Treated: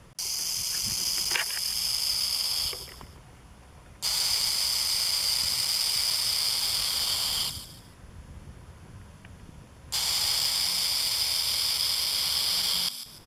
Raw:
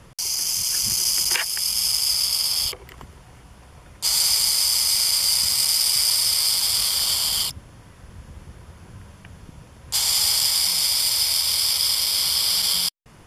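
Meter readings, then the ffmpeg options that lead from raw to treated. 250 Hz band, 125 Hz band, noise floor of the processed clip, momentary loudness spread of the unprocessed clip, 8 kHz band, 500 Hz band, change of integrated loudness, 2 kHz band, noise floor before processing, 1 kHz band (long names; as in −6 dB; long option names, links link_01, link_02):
can't be measured, −3.5 dB, −51 dBFS, 5 LU, −8.5 dB, −3.0 dB, −6.5 dB, −3.0 dB, −48 dBFS, −3.0 dB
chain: -filter_complex "[0:a]asplit=4[link_01][link_02][link_03][link_04];[link_02]adelay=148,afreqshift=62,volume=-12.5dB[link_05];[link_03]adelay=296,afreqshift=124,volume=-22.1dB[link_06];[link_04]adelay=444,afreqshift=186,volume=-31.8dB[link_07];[link_01][link_05][link_06][link_07]amix=inputs=4:normalize=0,acrossover=split=5300[link_08][link_09];[link_09]acompressor=threshold=-26dB:ratio=4:attack=1:release=60[link_10];[link_08][link_10]amix=inputs=2:normalize=0,aeval=exprs='0.501*(cos(1*acos(clip(val(0)/0.501,-1,1)))-cos(1*PI/2))+0.0141*(cos(7*acos(clip(val(0)/0.501,-1,1)))-cos(7*PI/2))':channel_layout=same,volume=-2.5dB"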